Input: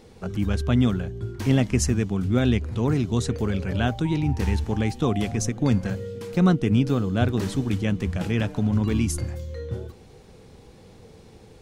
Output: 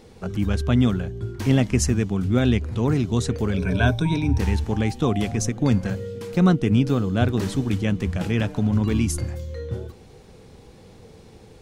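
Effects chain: 3.57–4.38 s: rippled EQ curve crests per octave 1.6, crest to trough 13 dB; trim +1.5 dB

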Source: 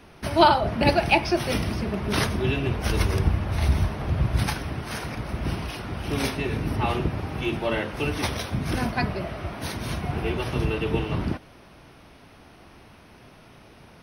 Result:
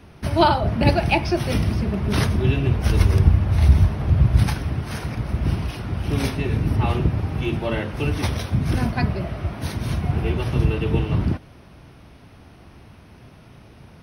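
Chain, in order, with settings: peaking EQ 88 Hz +9.5 dB 2.7 oct; trim -1 dB

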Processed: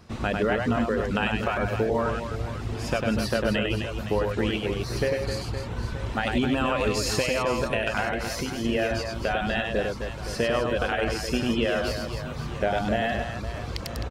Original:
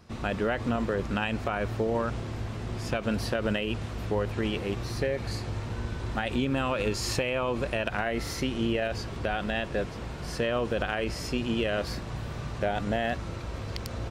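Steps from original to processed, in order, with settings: reverb removal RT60 1.6 s; 8.04–8.65 s: compression, threshold -32 dBFS, peak gain reduction 7 dB; on a send: reverse bouncing-ball echo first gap 100 ms, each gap 1.6×, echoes 5; on the sum: trim +3.5 dB

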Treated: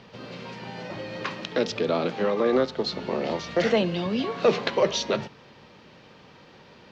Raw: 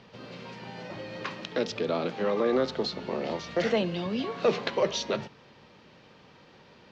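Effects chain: 2.26–2.87 s: upward expansion 1.5:1, over -33 dBFS; trim +4 dB

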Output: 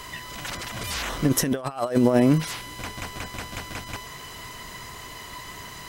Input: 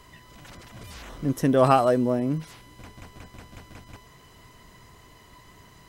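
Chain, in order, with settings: tilt shelf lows -4.5 dB, about 670 Hz; compressor with a negative ratio -27 dBFS, ratio -0.5; trim +6.5 dB

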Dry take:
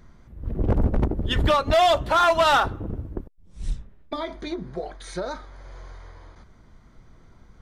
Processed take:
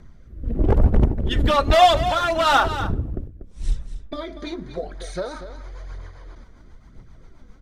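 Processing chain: rotary cabinet horn 1 Hz, later 7.5 Hz, at 4.53 s; phaser 1 Hz, delay 4.3 ms, feedback 42%; delay 240 ms -11.5 dB; trim +3.5 dB

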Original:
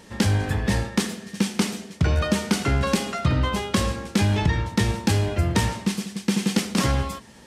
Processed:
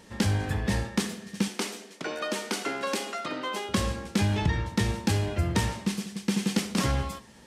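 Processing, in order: 1.48–3.69 s: high-pass 280 Hz 24 dB/octave; flutter echo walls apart 11.1 m, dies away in 0.21 s; trim -4.5 dB

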